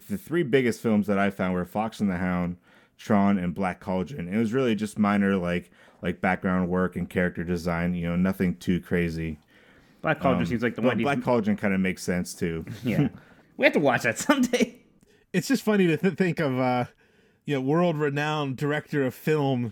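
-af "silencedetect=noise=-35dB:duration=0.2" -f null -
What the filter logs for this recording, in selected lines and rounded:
silence_start: 2.54
silence_end: 3.01 | silence_duration: 0.47
silence_start: 5.60
silence_end: 6.03 | silence_duration: 0.43
silence_start: 9.34
silence_end: 10.04 | silence_duration: 0.69
silence_start: 13.15
silence_end: 13.59 | silence_duration: 0.44
silence_start: 14.69
silence_end: 15.34 | silence_duration: 0.65
silence_start: 16.86
silence_end: 17.48 | silence_duration: 0.62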